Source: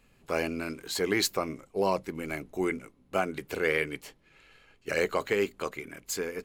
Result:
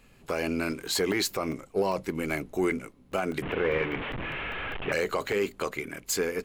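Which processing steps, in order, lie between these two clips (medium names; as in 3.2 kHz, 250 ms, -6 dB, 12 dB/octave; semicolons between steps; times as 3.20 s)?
3.42–4.92 s: one-bit delta coder 16 kbps, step -33 dBFS; in parallel at -9 dB: saturation -29.5 dBFS, distortion -7 dB; on the sum: peak limiter -20 dBFS, peak gain reduction 7.5 dB; crackling interface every 0.20 s, samples 64, zero, from 0.72 s; trim +3 dB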